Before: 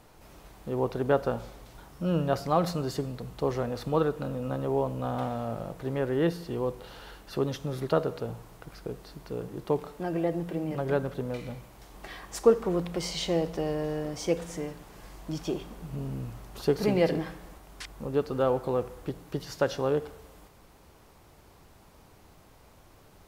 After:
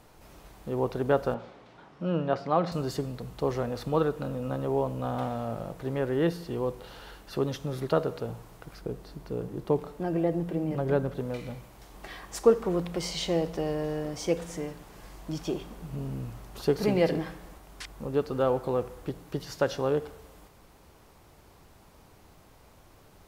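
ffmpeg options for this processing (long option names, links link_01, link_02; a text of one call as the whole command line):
ffmpeg -i in.wav -filter_complex "[0:a]asettb=1/sr,asplit=3[link_01][link_02][link_03];[link_01]atrim=end=1.344[link_04];[link_02]atrim=start=1.34:end=2.72,asetpts=PTS-STARTPTS,afade=type=in:duration=0.004:curve=qsin,afade=type=out:start_time=1.376:duration=0.004:curve=qsin,highpass=160,lowpass=3300[link_05];[link_03]atrim=start=2.716[link_06];[link_04][link_05]acrossfade=duration=0.004:curve1=hsin:curve2=qsin[link_07];[link_07][link_06]acrossfade=duration=0.004:curve1=qsin:curve2=hsin,asettb=1/sr,asplit=3[link_08][link_09][link_10];[link_08]atrim=end=8.814[link_11];[link_09]atrim=start=8.81:end=11.17,asetpts=PTS-STARTPTS,afade=type=in:duration=0.004:curve=qsin,afade=type=out:start_time=2.356:duration=0.004:curve=qsin,tiltshelf=frequency=720:gain=3[link_12];[link_10]atrim=start=11.166[link_13];[link_11][link_12]acrossfade=duration=0.004:curve1=hsin:curve2=qsin[link_14];[link_14][link_13]acrossfade=duration=0.004:curve1=qsin:curve2=hsin" out.wav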